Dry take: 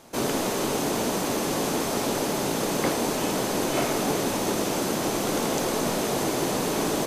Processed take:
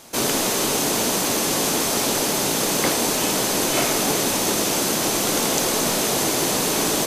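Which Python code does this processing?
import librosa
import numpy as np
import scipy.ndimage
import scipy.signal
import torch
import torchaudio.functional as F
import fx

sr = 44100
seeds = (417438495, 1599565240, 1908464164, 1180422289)

y = fx.high_shelf(x, sr, hz=2000.0, db=9.5)
y = F.gain(torch.from_numpy(y), 1.5).numpy()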